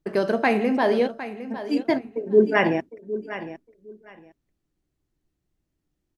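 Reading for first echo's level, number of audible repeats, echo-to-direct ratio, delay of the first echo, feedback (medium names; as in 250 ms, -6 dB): -13.0 dB, 2, -13.0 dB, 758 ms, 19%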